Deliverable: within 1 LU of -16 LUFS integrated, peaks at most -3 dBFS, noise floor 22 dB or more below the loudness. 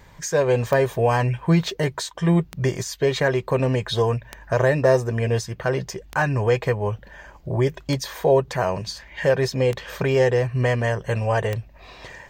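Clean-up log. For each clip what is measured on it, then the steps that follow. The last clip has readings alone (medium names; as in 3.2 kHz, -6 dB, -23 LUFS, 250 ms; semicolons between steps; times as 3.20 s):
clicks found 7; loudness -22.5 LUFS; peak level -6.0 dBFS; loudness target -16.0 LUFS
-> de-click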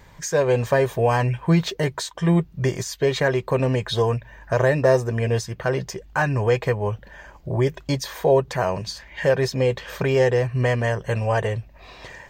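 clicks found 0; loudness -22.5 LUFS; peak level -6.0 dBFS; loudness target -16.0 LUFS
-> trim +6.5 dB; peak limiter -3 dBFS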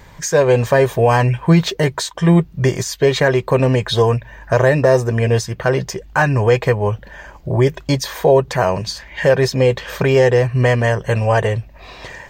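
loudness -16.0 LUFS; peak level -3.0 dBFS; noise floor -42 dBFS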